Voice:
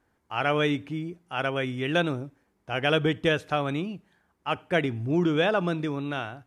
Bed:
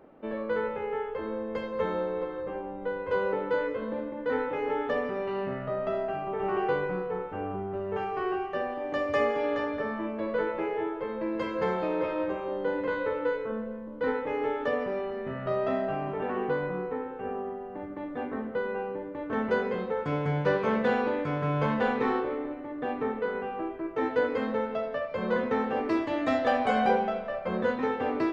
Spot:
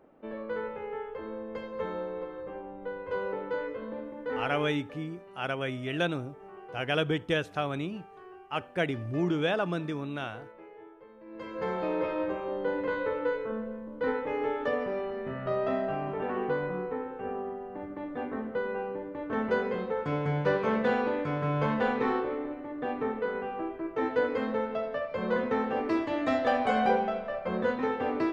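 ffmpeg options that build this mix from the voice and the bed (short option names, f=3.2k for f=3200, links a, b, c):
-filter_complex "[0:a]adelay=4050,volume=-4.5dB[a];[1:a]volume=13dB,afade=t=out:st=4.53:d=0.25:silence=0.199526,afade=t=in:st=11.25:d=0.64:silence=0.125893[b];[a][b]amix=inputs=2:normalize=0"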